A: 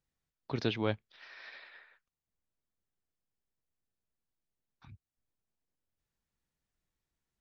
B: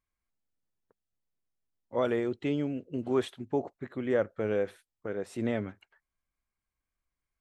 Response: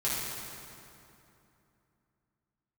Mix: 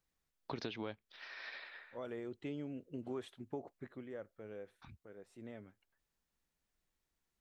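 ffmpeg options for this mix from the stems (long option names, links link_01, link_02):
-filter_complex "[0:a]equalizer=frequency=110:width_type=o:width=1.2:gain=-7,acompressor=threshold=-37dB:ratio=1.5,volume=2dB,asplit=2[link_01][link_02];[1:a]volume=-9dB,afade=type=out:start_time=3.86:duration=0.24:silence=0.298538[link_03];[link_02]apad=whole_len=326578[link_04];[link_03][link_04]sidechaincompress=threshold=-51dB:ratio=8:attack=26:release=1050[link_05];[link_01][link_05]amix=inputs=2:normalize=0,acompressor=threshold=-38dB:ratio=6"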